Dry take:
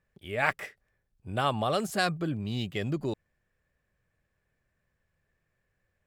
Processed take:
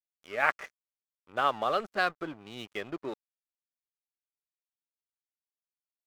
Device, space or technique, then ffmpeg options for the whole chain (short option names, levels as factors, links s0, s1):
pocket radio on a weak battery: -af "highpass=350,lowpass=3200,aeval=exprs='sgn(val(0))*max(abs(val(0))-0.00501,0)':c=same,equalizer=f=1300:t=o:w=0.45:g=5.5"